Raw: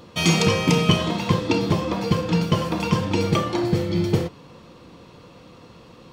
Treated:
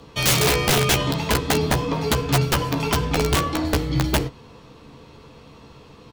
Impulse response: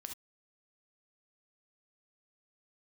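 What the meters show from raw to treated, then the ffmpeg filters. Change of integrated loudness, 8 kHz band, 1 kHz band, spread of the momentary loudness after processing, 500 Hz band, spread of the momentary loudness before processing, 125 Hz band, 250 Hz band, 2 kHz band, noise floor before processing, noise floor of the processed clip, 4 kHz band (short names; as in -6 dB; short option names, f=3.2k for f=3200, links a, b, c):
+1.0 dB, +7.0 dB, +2.0 dB, 5 LU, 0.0 dB, 5 LU, -0.5 dB, -3.5 dB, +3.5 dB, -48 dBFS, -47 dBFS, +2.5 dB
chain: -filter_complex "[0:a]afreqshift=-37,aeval=exprs='(mod(4.22*val(0)+1,2)-1)/4.22':c=same,asplit=2[a][b];[b]adelay=14,volume=-7.5dB[c];[a][c]amix=inputs=2:normalize=0"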